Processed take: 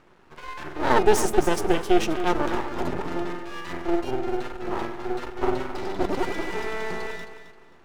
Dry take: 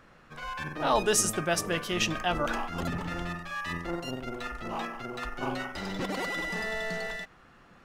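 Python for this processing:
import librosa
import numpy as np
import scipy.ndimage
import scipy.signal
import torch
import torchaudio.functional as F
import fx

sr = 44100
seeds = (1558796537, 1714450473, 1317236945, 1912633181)

p1 = fx.dynamic_eq(x, sr, hz=370.0, q=0.9, threshold_db=-43.0, ratio=4.0, max_db=6)
p2 = fx.small_body(p1, sr, hz=(370.0, 910.0), ring_ms=40, db=15)
p3 = np.maximum(p2, 0.0)
y = p3 + fx.echo_feedback(p3, sr, ms=265, feedback_pct=26, wet_db=-11.0, dry=0)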